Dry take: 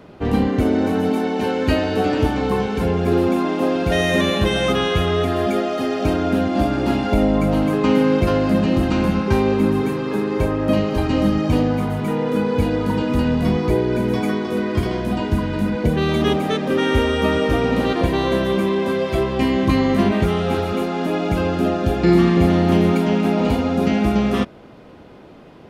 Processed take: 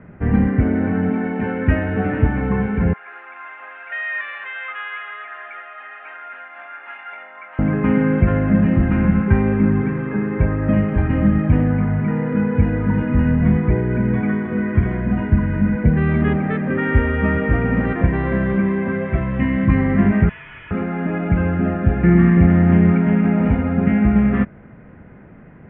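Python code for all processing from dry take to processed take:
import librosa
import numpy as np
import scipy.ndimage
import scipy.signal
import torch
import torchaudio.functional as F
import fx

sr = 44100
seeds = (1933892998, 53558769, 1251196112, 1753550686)

y = fx.chain(x, sr, fx.ladder_highpass(hz=870.0, resonance_pct=30),
    fx.dynamic_eq(hz=3000.0, q=1.5, threshold_db=-46.0, ratio=4.0, max_db=7), at=(2.93, 7.59))
y = fx.chain(y, sr, fx.high_shelf(hz=3700.0, db=8.5),
    fx.notch_comb(f0_hz=400.0), at=(19.17, 19.7))
y = fx.chain(y, sr, fx.highpass(hz=860.0, slope=12),
    fx.clip_hard(threshold_db=-31.5),
    fx.freq_invert(carrier_hz=3800), at=(20.29, 20.71))
y = scipy.signal.sosfilt(scipy.signal.butter(6, 2000.0, 'lowpass', fs=sr, output='sos'), y)
y = fx.band_shelf(y, sr, hz=590.0, db=-10.5, octaves=2.5)
y = y * 10.0 ** (5.5 / 20.0)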